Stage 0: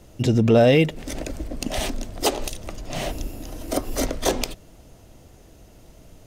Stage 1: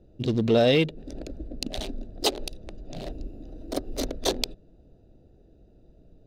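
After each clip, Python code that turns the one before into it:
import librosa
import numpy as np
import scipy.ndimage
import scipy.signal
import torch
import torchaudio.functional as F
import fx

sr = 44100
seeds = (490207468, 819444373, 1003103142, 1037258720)

y = fx.wiener(x, sr, points=41)
y = fx.graphic_eq_15(y, sr, hz=(100, 400, 4000), db=(-4, 3, 12))
y = y * 10.0 ** (-5.5 / 20.0)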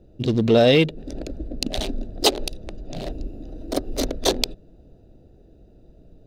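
y = fx.rider(x, sr, range_db=5, speed_s=2.0)
y = y * 10.0 ** (4.0 / 20.0)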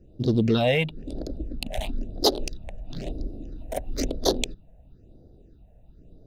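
y = fx.phaser_stages(x, sr, stages=6, low_hz=320.0, high_hz=2500.0, hz=1.0, feedback_pct=20)
y = y * 10.0 ** (-1.5 / 20.0)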